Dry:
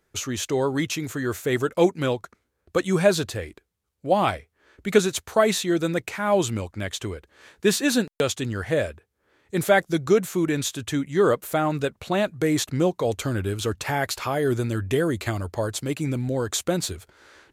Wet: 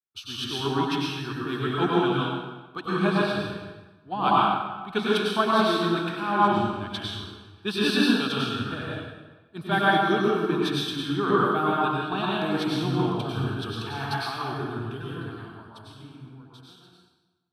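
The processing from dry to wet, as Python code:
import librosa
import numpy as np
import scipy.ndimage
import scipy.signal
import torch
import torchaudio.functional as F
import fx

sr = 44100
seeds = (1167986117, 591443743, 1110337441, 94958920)

y = fx.fade_out_tail(x, sr, length_s=4.45)
y = fx.transient(y, sr, attack_db=0, sustain_db=-8)
y = fx.highpass(y, sr, hz=270.0, slope=6)
y = fx.air_absorb(y, sr, metres=62.0)
y = fx.fixed_phaser(y, sr, hz=2000.0, stages=6)
y = fx.rev_plate(y, sr, seeds[0], rt60_s=2.0, hf_ratio=0.75, predelay_ms=85, drr_db=-6.0)
y = fx.band_widen(y, sr, depth_pct=70)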